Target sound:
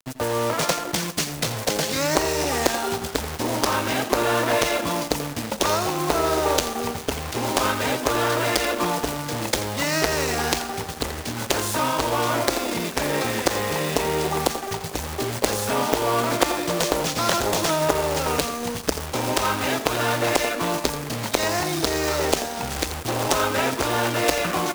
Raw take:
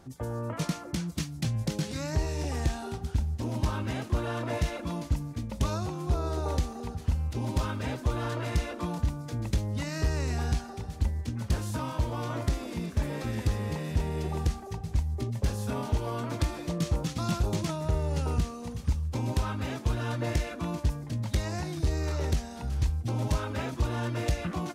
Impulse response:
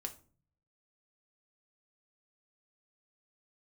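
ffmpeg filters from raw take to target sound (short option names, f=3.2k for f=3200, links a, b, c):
-filter_complex "[0:a]highpass=87,acontrast=47,aeval=exprs='0.355*(cos(1*acos(clip(val(0)/0.355,-1,1)))-cos(1*PI/2))+0.178*(cos(3*acos(clip(val(0)/0.355,-1,1)))-cos(3*PI/2))':c=same,asoftclip=type=tanh:threshold=-8dB,acrusher=bits=3:mode=log:mix=0:aa=0.000001,aeval=exprs='sgn(val(0))*max(abs(val(0))-0.00422,0)':c=same,acrossover=split=330|3000[a][b][c];[a]acompressor=threshold=-51dB:ratio=6[d];[d][b][c]amix=inputs=3:normalize=0,asplit=2[e][f];[1:a]atrim=start_sample=2205,adelay=84[g];[f][g]afir=irnorm=-1:irlink=0,volume=-10.5dB[h];[e][h]amix=inputs=2:normalize=0,alimiter=level_in=18dB:limit=-1dB:release=50:level=0:latency=1,volume=-1dB"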